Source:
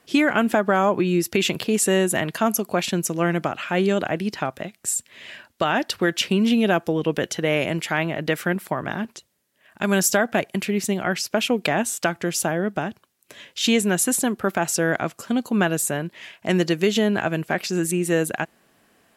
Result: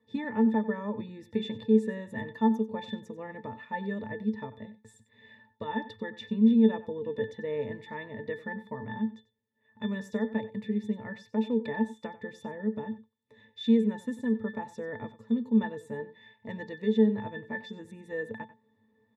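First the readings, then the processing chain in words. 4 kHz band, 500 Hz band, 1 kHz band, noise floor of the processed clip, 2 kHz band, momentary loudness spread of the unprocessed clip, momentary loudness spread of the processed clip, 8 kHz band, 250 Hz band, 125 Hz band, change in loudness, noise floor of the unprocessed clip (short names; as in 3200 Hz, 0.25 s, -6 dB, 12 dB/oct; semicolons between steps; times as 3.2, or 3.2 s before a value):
-19.0 dB, -10.0 dB, -12.5 dB, -71 dBFS, -15.5 dB, 9 LU, 16 LU, under -35 dB, -5.0 dB, -11.5 dB, -8.5 dB, -64 dBFS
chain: octave resonator A, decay 0.16 s; on a send: echo 93 ms -16 dB; on the sum: gain +2.5 dB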